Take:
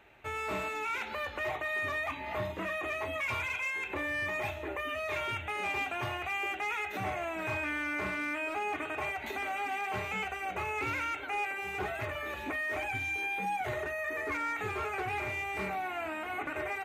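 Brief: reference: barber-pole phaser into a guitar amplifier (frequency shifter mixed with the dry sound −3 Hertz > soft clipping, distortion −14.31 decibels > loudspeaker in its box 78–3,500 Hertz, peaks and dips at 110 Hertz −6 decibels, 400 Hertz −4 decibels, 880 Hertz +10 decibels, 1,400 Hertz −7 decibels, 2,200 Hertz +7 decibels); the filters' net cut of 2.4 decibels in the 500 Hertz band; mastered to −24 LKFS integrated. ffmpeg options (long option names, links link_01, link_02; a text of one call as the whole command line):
ffmpeg -i in.wav -filter_complex "[0:a]equalizer=frequency=500:width_type=o:gain=-3.5,asplit=2[link_01][link_02];[link_02]afreqshift=-3[link_03];[link_01][link_03]amix=inputs=2:normalize=1,asoftclip=threshold=-35.5dB,highpass=78,equalizer=frequency=110:width_type=q:width=4:gain=-6,equalizer=frequency=400:width_type=q:width=4:gain=-4,equalizer=frequency=880:width_type=q:width=4:gain=10,equalizer=frequency=1400:width_type=q:width=4:gain=-7,equalizer=frequency=2200:width_type=q:width=4:gain=7,lowpass=frequency=3500:width=0.5412,lowpass=frequency=3500:width=1.3066,volume=13dB" out.wav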